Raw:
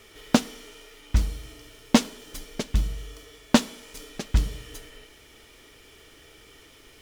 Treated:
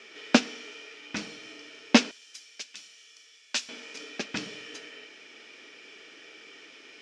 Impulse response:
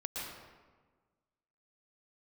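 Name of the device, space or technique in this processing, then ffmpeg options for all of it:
television speaker: -filter_complex "[0:a]highpass=f=210:w=0.5412,highpass=f=210:w=1.3066,equalizer=f=1000:t=q:w=4:g=-3,equalizer=f=1600:t=q:w=4:g=5,equalizer=f=2500:t=q:w=4:g=9,equalizer=f=5300:t=q:w=4:g=4,lowpass=f=6500:w=0.5412,lowpass=f=6500:w=1.3066,asettb=1/sr,asplit=3[s0][s1][s2];[s0]atrim=end=2.114[s3];[s1]atrim=start=2.11:end=3.69,asetpts=PTS-STARTPTS,afade=t=in:d=0.004:c=qsin,afade=t=out:st=1.576:d=0.004:c=qsin,aderivative[s4];[s2]atrim=start=3.686[s5];[s3][s4]acrossfade=d=0.004:c1=hsin:c2=qsin[s6];[s6][s5]acrossfade=d=0.004:c1=qsin:c2=hsin"

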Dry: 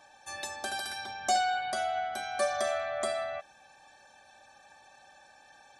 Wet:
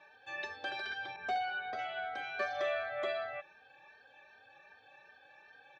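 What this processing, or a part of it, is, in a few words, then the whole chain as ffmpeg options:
barber-pole flanger into a guitar amplifier: -filter_complex "[0:a]asplit=2[s0][s1];[s1]adelay=3,afreqshift=2.6[s2];[s0][s2]amix=inputs=2:normalize=1,asoftclip=type=tanh:threshold=0.0708,highpass=98,equalizer=f=220:t=q:w=4:g=-8,equalizer=f=450:t=q:w=4:g=8,equalizer=f=710:t=q:w=4:g=-5,equalizer=f=1000:t=q:w=4:g=-3,equalizer=f=1600:t=q:w=4:g=4,equalizer=f=2500:t=q:w=4:g=5,lowpass=f=3800:w=0.5412,lowpass=f=3800:w=1.3066,asettb=1/sr,asplit=3[s3][s4][s5];[s3]atrim=end=1.164[s6];[s4]atrim=start=1.16:end=1.79,asetpts=PTS-STARTPTS,afade=t=in:d=0.004:c=qsin,afade=t=out:st=0.626:d=0.004:c=qsin,adynamicequalizer=threshold=0.00398:dfrequency=1500:dqfactor=0.7:tfrequency=1500:tqfactor=0.7:attack=5:release=100:ratio=0.375:range=3.5:mode=cutabove:tftype=highshelf[s7];[s5]atrim=start=1.786[s8];[s6][s7]acrossfade=d=0.004:c1=hsin:c2=qsin[s9];[s9][s8]acrossfade=d=0.004:c1=qsin:c2=hsin"

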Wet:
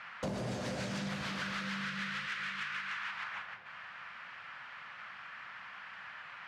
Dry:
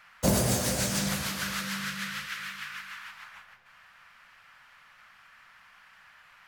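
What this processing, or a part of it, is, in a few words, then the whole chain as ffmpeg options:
AM radio: -af "highpass=110,lowpass=3400,acompressor=threshold=0.00708:ratio=6,asoftclip=type=tanh:threshold=0.0126,volume=2.66"

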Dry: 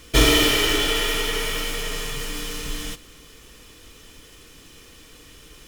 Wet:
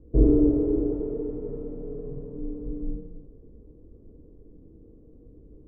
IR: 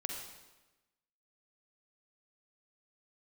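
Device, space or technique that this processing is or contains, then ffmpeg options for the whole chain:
next room: -filter_complex "[0:a]lowpass=f=460:w=0.5412,lowpass=f=460:w=1.3066[s0];[1:a]atrim=start_sample=2205[s1];[s0][s1]afir=irnorm=-1:irlink=0"

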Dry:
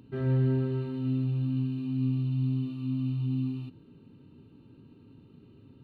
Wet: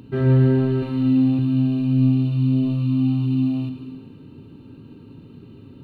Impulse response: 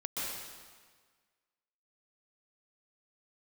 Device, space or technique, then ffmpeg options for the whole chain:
saturated reverb return: -filter_complex "[0:a]asplit=2[s0][s1];[1:a]atrim=start_sample=2205[s2];[s1][s2]afir=irnorm=-1:irlink=0,asoftclip=type=tanh:threshold=0.1,volume=0.398[s3];[s0][s3]amix=inputs=2:normalize=0,asettb=1/sr,asplit=3[s4][s5][s6];[s4]atrim=end=0.784[s7];[s5]atrim=start=0.78:end=1.39,asetpts=PTS-STARTPTS,afade=t=in:d=0.004:c=qsin,afade=t=out:st=0.606:d=0.004:c=qsin,asplit=2[s8][s9];[s9]adelay=42,volume=0.562[s10];[s8][s10]amix=inputs=2:normalize=0,atrim=end_sample=26901[s11];[s6]atrim=start=1.386[s12];[s7][s11]acrossfade=d=0.004:c1=hsin:c2=qsin[s13];[s13][s12]acrossfade=d=0.004:c1=qsin:c2=hsin,volume=2.66"

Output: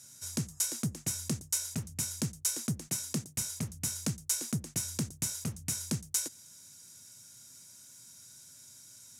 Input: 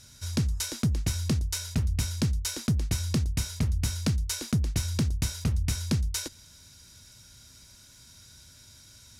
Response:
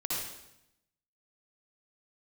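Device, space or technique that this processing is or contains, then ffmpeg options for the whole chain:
budget condenser microphone: -filter_complex "[0:a]highpass=f=120:w=0.5412,highpass=f=120:w=1.3066,highshelf=f=5600:t=q:w=1.5:g=8.5,asettb=1/sr,asplit=3[s0][s1][s2];[s0]atrim=end=2.884[s3];[s1]atrim=start=2.88:end=3.38,asetpts=PTS-STARTPTS,afade=t=in:d=0.004:c=qsin,afade=t=out:st=0.496:d=0.004:c=qsin,highpass=f=120:w=0.5412,highpass=f=120:w=1.3066[s4];[s2]atrim=start=3.376[s5];[s3][s4]acrossfade=d=0.004:c1=hsin:c2=qsin[s6];[s6][s5]acrossfade=d=0.004:c1=qsin:c2=hsin,volume=0.501"

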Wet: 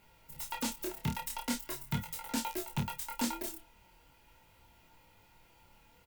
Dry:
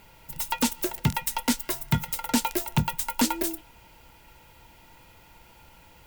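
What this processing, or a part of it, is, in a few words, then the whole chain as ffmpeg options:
double-tracked vocal: -filter_complex "[0:a]asplit=2[s0][s1];[s1]adelay=30,volume=0.447[s2];[s0][s2]amix=inputs=2:normalize=0,flanger=delay=18.5:depth=7.2:speed=0.42,volume=0.422"

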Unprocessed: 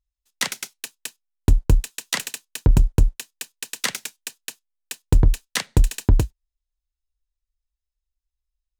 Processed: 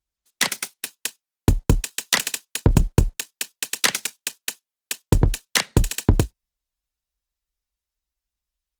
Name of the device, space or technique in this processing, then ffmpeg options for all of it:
video call: -af "highpass=f=120:p=1,dynaudnorm=f=120:g=3:m=1.41,volume=1.33" -ar 48000 -c:a libopus -b:a 24k

